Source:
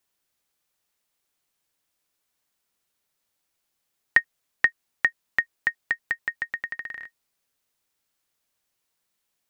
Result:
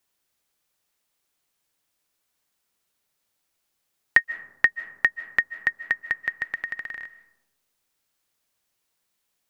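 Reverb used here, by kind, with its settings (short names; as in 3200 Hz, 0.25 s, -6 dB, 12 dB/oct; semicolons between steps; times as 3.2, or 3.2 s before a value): digital reverb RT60 1 s, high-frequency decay 0.3×, pre-delay 0.115 s, DRR 16 dB; gain +1.5 dB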